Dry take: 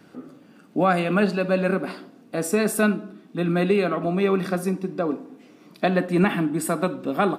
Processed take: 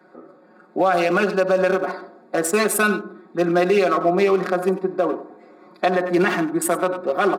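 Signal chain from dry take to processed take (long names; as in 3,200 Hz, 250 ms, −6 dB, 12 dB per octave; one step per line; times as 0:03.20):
adaptive Wiener filter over 15 samples
high-pass filter 440 Hz 12 dB per octave
comb filter 5.5 ms, depth 83%
on a send: single-tap delay 95 ms −16.5 dB
on the sum: automatic gain control gain up to 5 dB
brickwall limiter −12.5 dBFS, peak gain reduction 10 dB
level +3.5 dB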